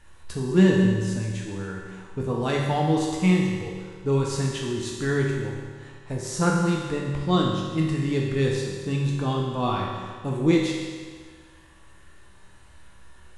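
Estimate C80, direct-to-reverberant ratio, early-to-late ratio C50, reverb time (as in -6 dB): 3.0 dB, -2.5 dB, 0.5 dB, 1.7 s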